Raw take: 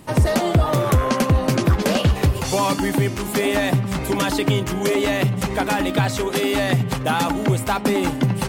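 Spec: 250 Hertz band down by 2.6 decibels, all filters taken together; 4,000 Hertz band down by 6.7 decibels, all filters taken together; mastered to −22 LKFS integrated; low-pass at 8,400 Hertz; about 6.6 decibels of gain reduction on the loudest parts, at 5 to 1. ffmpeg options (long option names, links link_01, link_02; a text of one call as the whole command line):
ffmpeg -i in.wav -af "lowpass=8400,equalizer=frequency=250:width_type=o:gain=-3.5,equalizer=frequency=4000:width_type=o:gain=-9,acompressor=threshold=-20dB:ratio=5,volume=3dB" out.wav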